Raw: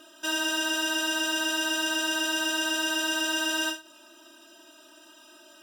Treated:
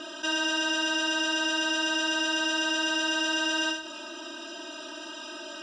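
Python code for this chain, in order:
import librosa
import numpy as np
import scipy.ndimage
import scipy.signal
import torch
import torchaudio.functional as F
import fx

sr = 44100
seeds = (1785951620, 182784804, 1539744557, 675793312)

y = scipy.signal.sosfilt(scipy.signal.butter(4, 6200.0, 'lowpass', fs=sr, output='sos'), x)
y = fx.notch(y, sr, hz=2000.0, q=28.0)
y = fx.env_flatten(y, sr, amount_pct=50)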